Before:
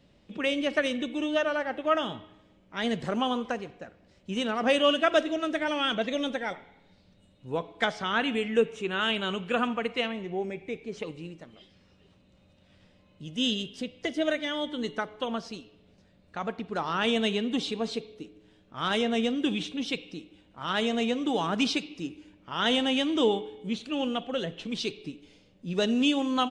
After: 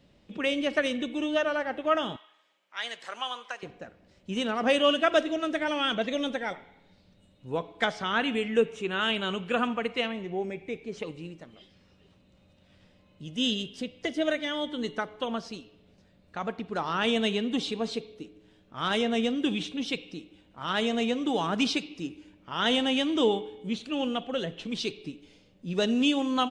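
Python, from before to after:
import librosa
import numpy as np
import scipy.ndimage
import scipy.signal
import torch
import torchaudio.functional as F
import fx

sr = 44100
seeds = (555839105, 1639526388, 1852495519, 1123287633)

y = fx.highpass(x, sr, hz=1100.0, slope=12, at=(2.16, 3.63))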